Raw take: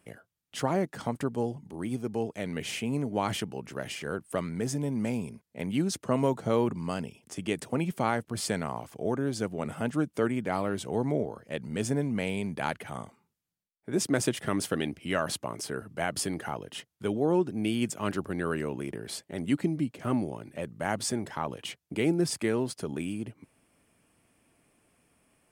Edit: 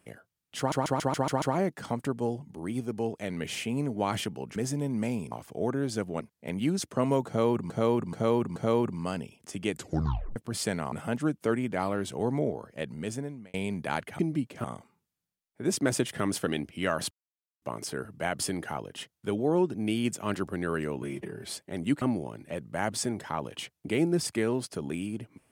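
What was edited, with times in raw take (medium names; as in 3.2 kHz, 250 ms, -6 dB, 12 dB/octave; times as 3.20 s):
0.58 s: stutter 0.14 s, 7 plays
3.72–4.58 s: delete
6.39–6.82 s: loop, 4 plays
7.55 s: tape stop 0.64 s
8.75–9.65 s: move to 5.33 s
11.55–12.27 s: fade out
15.39 s: insert silence 0.51 s
18.79–19.10 s: stretch 1.5×
19.63–20.08 s: move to 12.92 s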